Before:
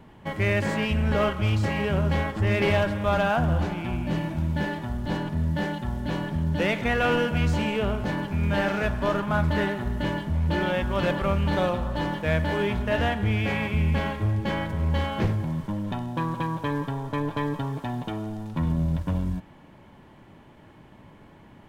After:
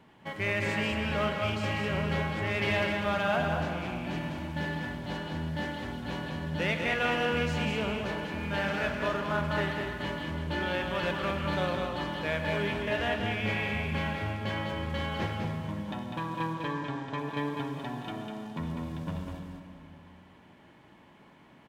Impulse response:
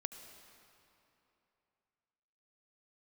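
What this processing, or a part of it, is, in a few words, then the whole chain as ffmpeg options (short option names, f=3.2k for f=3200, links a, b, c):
PA in a hall: -filter_complex "[0:a]asettb=1/sr,asplit=3[a][b][c];[a]atrim=end=16.534[d];[b]atrim=start=16.53:end=17.19,asetpts=PTS-STARTPTS,afade=t=in:d=0.004:c=qsin,afade=t=out:st=0.656:d=0.004:c=qsin,lowpass=f=7.8k:w=0.5412,lowpass=f=7.8k:w=1.3066[e];[c]atrim=start=17.186[f];[d][e]acrossfade=d=0.004:c1=hsin:c2=qsin[g];[g][f]acrossfade=d=0.004:c1=qsin:c2=hsin,highpass=f=140:p=1,equalizer=f=3.1k:t=o:w=2.8:g=5,aecho=1:1:200:0.562[h];[1:a]atrim=start_sample=2205[i];[h][i]afir=irnorm=-1:irlink=0,volume=-5dB"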